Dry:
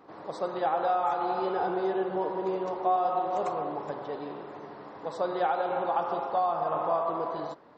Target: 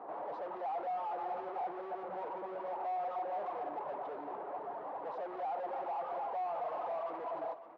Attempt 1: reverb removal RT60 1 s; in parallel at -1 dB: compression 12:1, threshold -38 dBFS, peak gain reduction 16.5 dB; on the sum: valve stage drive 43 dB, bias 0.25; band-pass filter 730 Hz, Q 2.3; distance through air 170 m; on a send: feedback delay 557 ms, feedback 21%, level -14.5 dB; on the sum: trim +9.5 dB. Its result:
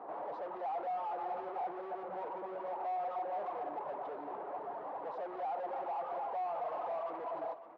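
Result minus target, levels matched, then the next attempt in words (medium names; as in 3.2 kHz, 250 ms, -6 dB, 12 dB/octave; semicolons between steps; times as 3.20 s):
compression: peak gain reduction +9 dB
reverb removal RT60 1 s; in parallel at -1 dB: compression 12:1, threshold -28 dBFS, peak gain reduction 7.5 dB; on the sum: valve stage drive 43 dB, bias 0.25; band-pass filter 730 Hz, Q 2.3; distance through air 170 m; on a send: feedback delay 557 ms, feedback 21%, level -14.5 dB; on the sum: trim +9.5 dB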